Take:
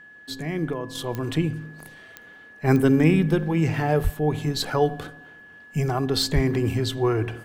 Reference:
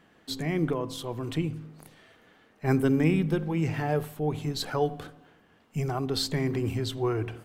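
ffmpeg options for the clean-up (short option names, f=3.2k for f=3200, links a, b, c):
-filter_complex "[0:a]adeclick=t=4,bandreject=f=1.7k:w=30,asplit=3[a][b][c];[a]afade=t=out:st=4.03:d=0.02[d];[b]highpass=f=140:w=0.5412,highpass=f=140:w=1.3066,afade=t=in:st=4.03:d=0.02,afade=t=out:st=4.15:d=0.02[e];[c]afade=t=in:st=4.15:d=0.02[f];[d][e][f]amix=inputs=3:normalize=0,asplit=3[g][h][i];[g]afade=t=out:st=6.34:d=0.02[j];[h]highpass=f=140:w=0.5412,highpass=f=140:w=1.3066,afade=t=in:st=6.34:d=0.02,afade=t=out:st=6.46:d=0.02[k];[i]afade=t=in:st=6.46:d=0.02[l];[j][k][l]amix=inputs=3:normalize=0,asetnsamples=n=441:p=0,asendcmd='0.95 volume volume -5.5dB',volume=0dB"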